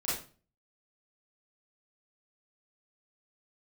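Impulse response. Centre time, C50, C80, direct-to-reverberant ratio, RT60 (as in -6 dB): 52 ms, 1.5 dB, 8.5 dB, -10.0 dB, 0.40 s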